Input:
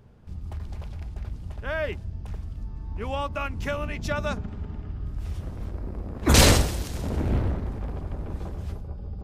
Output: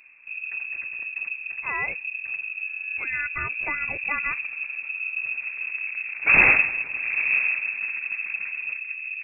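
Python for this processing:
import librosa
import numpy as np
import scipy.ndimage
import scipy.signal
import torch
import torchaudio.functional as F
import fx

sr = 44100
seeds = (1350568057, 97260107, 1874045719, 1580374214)

y = fx.freq_invert(x, sr, carrier_hz=2600)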